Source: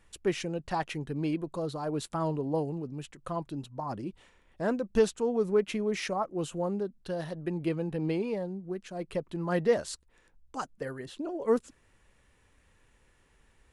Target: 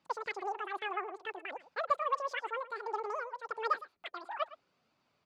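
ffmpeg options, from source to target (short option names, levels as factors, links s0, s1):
-af "flanger=delay=2.6:depth=7.3:regen=-53:speed=0.23:shape=triangular,asetrate=115101,aresample=44100,highpass=280,lowpass=3300,aecho=1:1:111:0.141,volume=0.841"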